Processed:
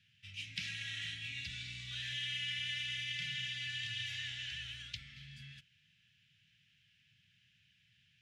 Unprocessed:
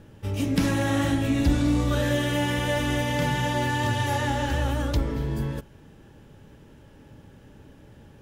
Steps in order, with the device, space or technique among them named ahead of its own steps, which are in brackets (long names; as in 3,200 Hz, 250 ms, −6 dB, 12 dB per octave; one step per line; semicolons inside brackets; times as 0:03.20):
inverse Chebyshev band-stop filter 330–1,000 Hz, stop band 60 dB
tin-can telephone (band-pass filter 470–2,900 Hz; hollow resonant body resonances 570/810 Hz, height 14 dB, ringing for 65 ms)
level +1 dB